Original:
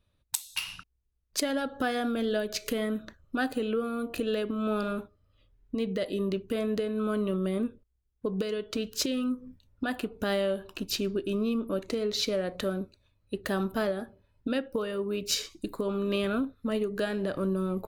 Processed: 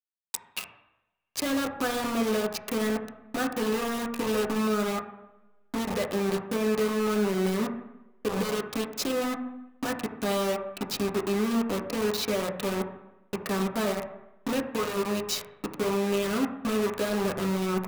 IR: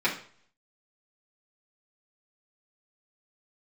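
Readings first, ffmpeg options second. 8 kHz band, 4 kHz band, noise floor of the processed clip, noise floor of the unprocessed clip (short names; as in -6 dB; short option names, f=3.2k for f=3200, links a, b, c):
+1.5 dB, 0.0 dB, -64 dBFS, -74 dBFS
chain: -filter_complex "[0:a]acrusher=bits=4:mix=0:aa=0.000001,bandreject=f=59.01:t=h:w=4,bandreject=f=118.02:t=h:w=4,bandreject=f=177.03:t=h:w=4,bandreject=f=236.04:t=h:w=4,bandreject=f=295.05:t=h:w=4,bandreject=f=354.06:t=h:w=4,bandreject=f=413.07:t=h:w=4,bandreject=f=472.08:t=h:w=4,bandreject=f=531.09:t=h:w=4,bandreject=f=590.1:t=h:w=4,bandreject=f=649.11:t=h:w=4,bandreject=f=708.12:t=h:w=4,bandreject=f=767.13:t=h:w=4,bandreject=f=826.14:t=h:w=4,bandreject=f=885.15:t=h:w=4,bandreject=f=944.16:t=h:w=4,bandreject=f=1.00317k:t=h:w=4,bandreject=f=1.06218k:t=h:w=4,bandreject=f=1.12119k:t=h:w=4,bandreject=f=1.1802k:t=h:w=4,bandreject=f=1.23921k:t=h:w=4,bandreject=f=1.29822k:t=h:w=4,bandreject=f=1.35723k:t=h:w=4,bandreject=f=1.41624k:t=h:w=4,bandreject=f=1.47525k:t=h:w=4,bandreject=f=1.53426k:t=h:w=4,bandreject=f=1.59327k:t=h:w=4,bandreject=f=1.65228k:t=h:w=4,bandreject=f=1.71129k:t=h:w=4,bandreject=f=1.7703k:t=h:w=4,bandreject=f=1.82931k:t=h:w=4,bandreject=f=1.88832k:t=h:w=4,bandreject=f=1.94733k:t=h:w=4,bandreject=f=2.00634k:t=h:w=4,asplit=2[a][b];[1:a]atrim=start_sample=2205,asetrate=22491,aresample=44100,lowpass=2.2k[c];[b][c]afir=irnorm=-1:irlink=0,volume=-17dB[d];[a][d]amix=inputs=2:normalize=0,volume=-2.5dB"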